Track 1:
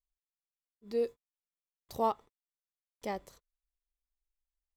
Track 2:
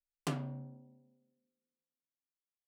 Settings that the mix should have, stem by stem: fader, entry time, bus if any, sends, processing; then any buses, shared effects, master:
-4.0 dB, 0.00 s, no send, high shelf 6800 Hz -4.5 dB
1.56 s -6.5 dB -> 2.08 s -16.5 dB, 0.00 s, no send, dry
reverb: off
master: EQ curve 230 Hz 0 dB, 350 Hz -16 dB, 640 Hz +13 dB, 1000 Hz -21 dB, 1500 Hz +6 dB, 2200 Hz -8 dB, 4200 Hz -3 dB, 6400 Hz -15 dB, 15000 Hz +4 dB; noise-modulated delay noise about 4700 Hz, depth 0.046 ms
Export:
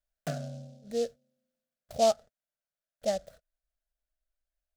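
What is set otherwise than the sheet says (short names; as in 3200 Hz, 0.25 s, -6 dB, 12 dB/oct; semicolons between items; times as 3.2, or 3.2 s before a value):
stem 1 -4.0 dB -> +2.5 dB; stem 2 -6.5 dB -> +2.0 dB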